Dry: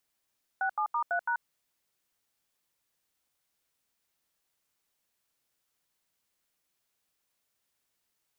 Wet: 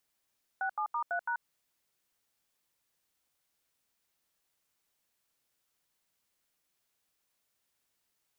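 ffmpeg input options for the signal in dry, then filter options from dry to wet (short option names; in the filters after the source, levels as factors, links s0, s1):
-f lavfi -i "aevalsrc='0.0355*clip(min(mod(t,0.166),0.085-mod(t,0.166))/0.002,0,1)*(eq(floor(t/0.166),0)*(sin(2*PI*770*mod(t,0.166))+sin(2*PI*1477*mod(t,0.166)))+eq(floor(t/0.166),1)*(sin(2*PI*852*mod(t,0.166))+sin(2*PI*1209*mod(t,0.166)))+eq(floor(t/0.166),2)*(sin(2*PI*941*mod(t,0.166))+sin(2*PI*1209*mod(t,0.166)))+eq(floor(t/0.166),3)*(sin(2*PI*697*mod(t,0.166))+sin(2*PI*1477*mod(t,0.166)))+eq(floor(t/0.166),4)*(sin(2*PI*941*mod(t,0.166))+sin(2*PI*1477*mod(t,0.166))))':d=0.83:s=44100"
-af "alimiter=level_in=1.33:limit=0.0631:level=0:latency=1:release=108,volume=0.75"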